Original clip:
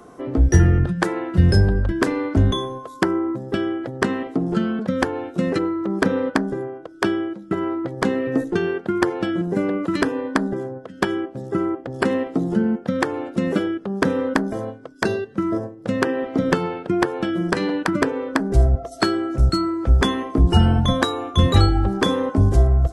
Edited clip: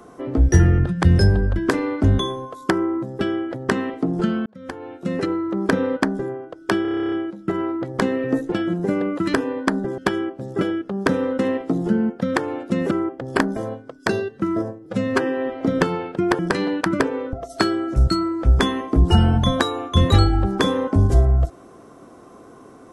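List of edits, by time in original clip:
1.03–1.36 s: delete
4.79–5.73 s: fade in
7.15 s: stutter 0.03 s, 11 plays
8.55–9.20 s: delete
10.66–10.94 s: delete
11.57–12.05 s: swap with 13.57–14.35 s
15.82–16.32 s: stretch 1.5×
17.10–17.41 s: delete
18.35–18.75 s: delete

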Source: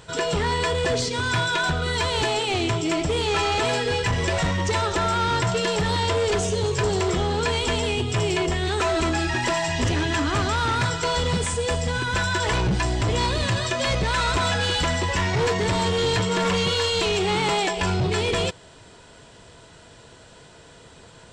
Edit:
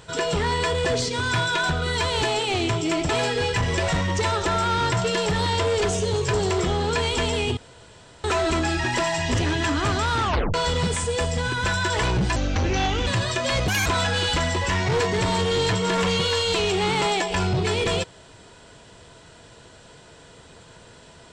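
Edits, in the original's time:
3.09–3.59 s: delete
8.07–8.74 s: room tone
10.72 s: tape stop 0.32 s
12.86–13.42 s: speed 79%
14.03–14.33 s: speed 165%

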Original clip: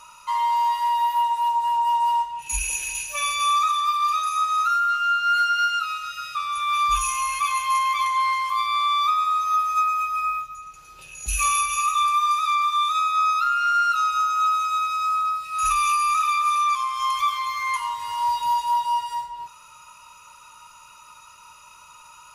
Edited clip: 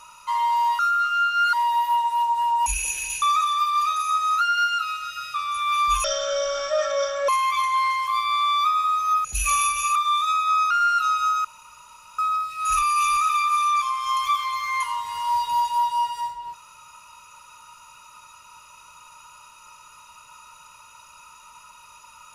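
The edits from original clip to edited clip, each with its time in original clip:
1.92–2.51 s: delete
3.07–3.49 s: delete
4.68–5.42 s: move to 0.79 s
7.05–7.71 s: speed 53%
9.67–11.18 s: delete
11.89–12.63 s: delete
13.38–13.64 s: delete
14.38–15.12 s: room tone
15.76–16.10 s: reverse

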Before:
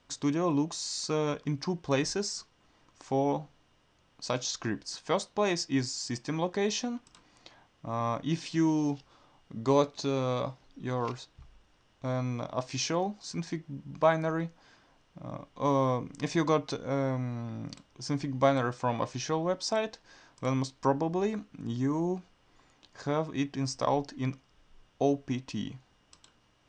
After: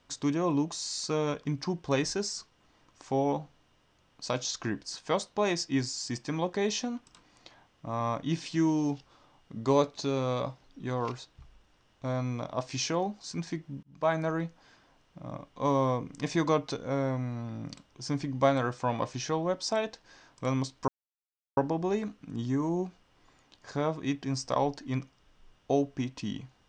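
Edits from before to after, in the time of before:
13.83–14.19 s: fade in
20.88 s: insert silence 0.69 s

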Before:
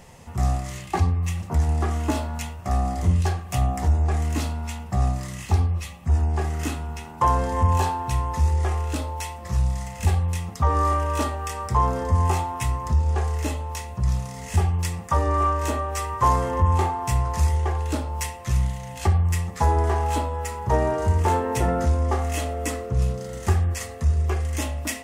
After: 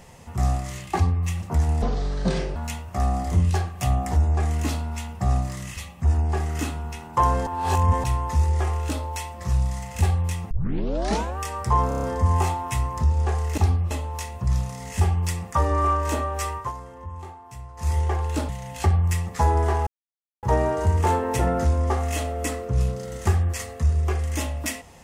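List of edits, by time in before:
1.82–2.27 s: speed 61%
5.48–5.81 s: move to 13.47 s
7.51–8.08 s: reverse
10.55 s: tape start 0.87 s
11.92 s: stutter 0.03 s, 6 plays
16.07–17.53 s: dip -17 dB, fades 0.21 s
18.05–18.70 s: delete
20.08–20.64 s: mute

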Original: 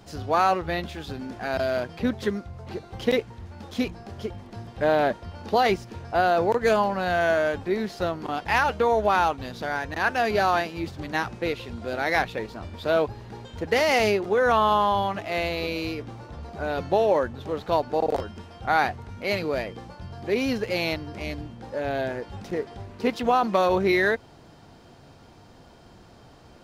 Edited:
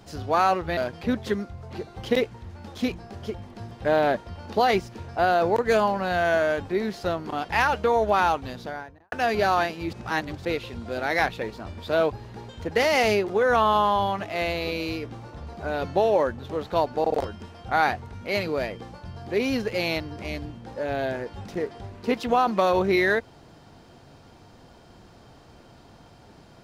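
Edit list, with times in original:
0.77–1.73 s: delete
9.41–10.08 s: studio fade out
10.89–11.41 s: reverse

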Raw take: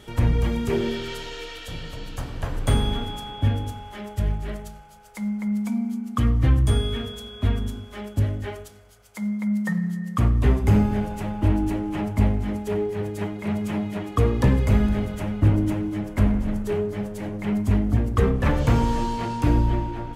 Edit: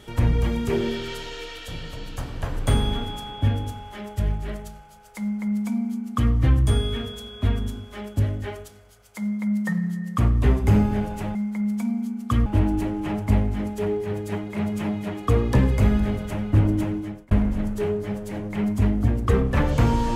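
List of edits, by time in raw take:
5.22–6.33 s: copy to 11.35 s
15.82–16.20 s: fade out

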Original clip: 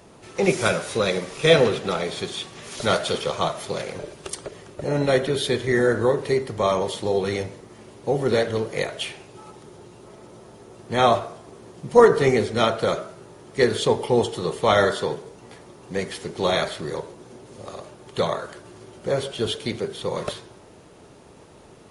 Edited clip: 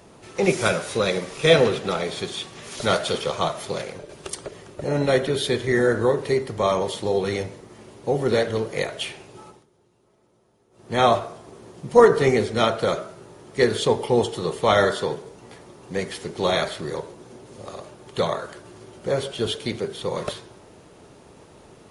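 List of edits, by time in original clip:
3.77–4.09 s: fade out linear, to -7.5 dB
9.42–10.95 s: dip -18 dB, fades 0.24 s

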